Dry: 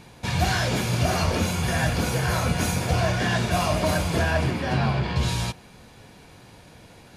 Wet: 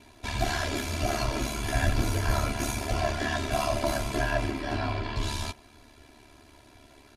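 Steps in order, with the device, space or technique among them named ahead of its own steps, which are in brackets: 1.74–2.45 low shelf 170 Hz +9 dB; ring-modulated robot voice (ring modulator 36 Hz; comb 3 ms, depth 99%); gain -5 dB

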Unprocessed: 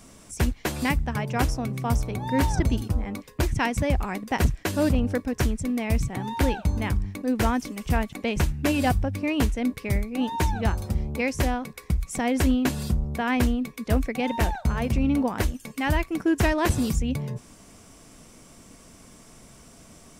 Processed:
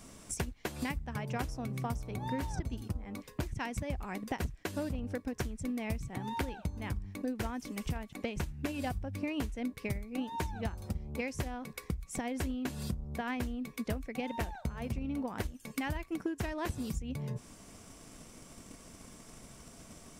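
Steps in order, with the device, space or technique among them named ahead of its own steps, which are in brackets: drum-bus smash (transient shaper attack +8 dB, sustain 0 dB; compressor 6:1, threshold -29 dBFS, peak gain reduction 17 dB; soft clip -19 dBFS, distortion -23 dB); gain -3.5 dB

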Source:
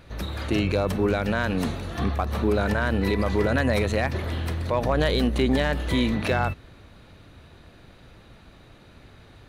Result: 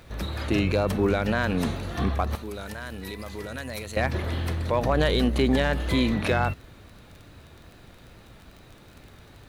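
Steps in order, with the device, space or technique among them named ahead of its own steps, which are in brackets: 2.35–3.97 pre-emphasis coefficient 0.8; vinyl LP (wow and flutter; crackle 21/s -38 dBFS; pink noise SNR 35 dB)

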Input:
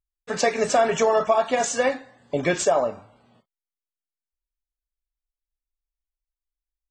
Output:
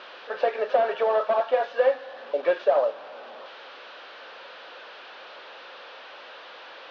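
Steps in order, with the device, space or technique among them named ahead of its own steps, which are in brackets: digital answering machine (BPF 380–3200 Hz; delta modulation 32 kbps, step -34 dBFS; speaker cabinet 430–3700 Hz, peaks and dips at 530 Hz +9 dB, 1500 Hz +3 dB, 2100 Hz -7 dB); gain -2.5 dB

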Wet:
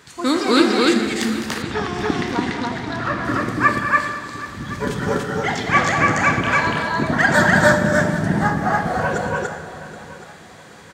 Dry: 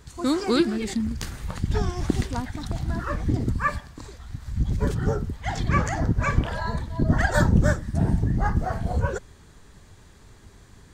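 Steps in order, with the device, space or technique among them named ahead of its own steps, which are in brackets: stadium PA (HPF 200 Hz 12 dB/oct; bell 2100 Hz +7 dB 2 oct; loudspeakers at several distances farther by 71 m -9 dB, 99 m -1 dB; reverb RT60 1.7 s, pre-delay 19 ms, DRR 6 dB); 1.62–3.25 Bessel low-pass 4200 Hz, order 2; feedback echo 0.776 s, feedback 36%, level -16.5 dB; gain +3.5 dB

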